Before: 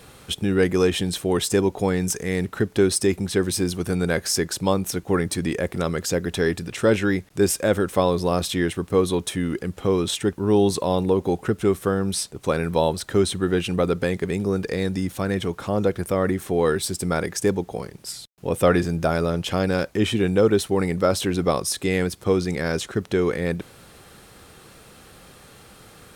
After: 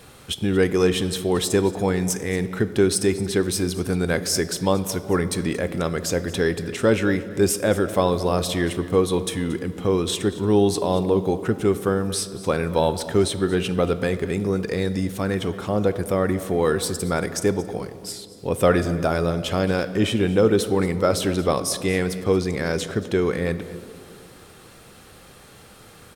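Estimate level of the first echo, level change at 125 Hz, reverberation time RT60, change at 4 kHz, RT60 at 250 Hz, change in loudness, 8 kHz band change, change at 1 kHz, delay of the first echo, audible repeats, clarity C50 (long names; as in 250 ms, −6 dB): −18.0 dB, +0.5 dB, 2.3 s, +0.5 dB, 2.7 s, +0.5 dB, 0.0 dB, +0.5 dB, 229 ms, 1, 12.5 dB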